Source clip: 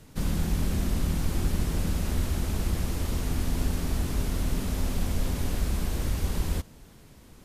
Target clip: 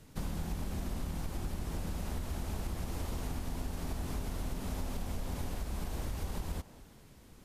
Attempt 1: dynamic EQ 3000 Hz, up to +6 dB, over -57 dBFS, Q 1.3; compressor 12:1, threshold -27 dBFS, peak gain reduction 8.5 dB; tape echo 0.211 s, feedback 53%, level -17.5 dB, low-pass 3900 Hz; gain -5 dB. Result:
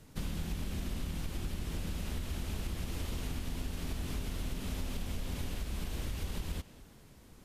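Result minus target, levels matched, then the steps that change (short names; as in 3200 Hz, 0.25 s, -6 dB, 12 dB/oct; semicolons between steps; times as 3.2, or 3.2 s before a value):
1000 Hz band -4.5 dB
change: dynamic EQ 810 Hz, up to +6 dB, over -57 dBFS, Q 1.3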